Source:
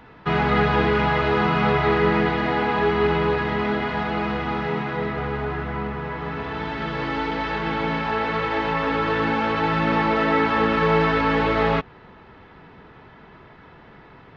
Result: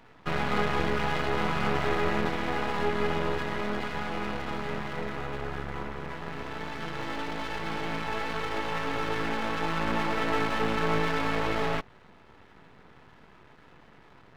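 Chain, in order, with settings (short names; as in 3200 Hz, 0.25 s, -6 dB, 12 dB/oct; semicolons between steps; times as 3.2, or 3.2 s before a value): half-wave rectifier; gain -4 dB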